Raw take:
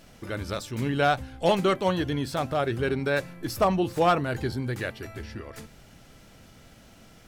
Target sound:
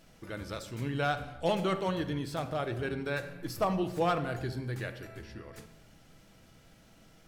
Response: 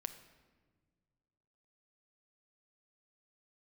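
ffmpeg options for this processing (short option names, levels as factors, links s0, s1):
-filter_complex "[1:a]atrim=start_sample=2205,afade=t=out:st=0.35:d=0.01,atrim=end_sample=15876[s0];[0:a][s0]afir=irnorm=-1:irlink=0,volume=0.596"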